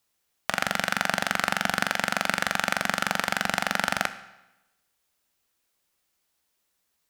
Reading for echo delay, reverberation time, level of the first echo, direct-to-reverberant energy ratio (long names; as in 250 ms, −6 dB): no echo audible, 0.95 s, no echo audible, 11.0 dB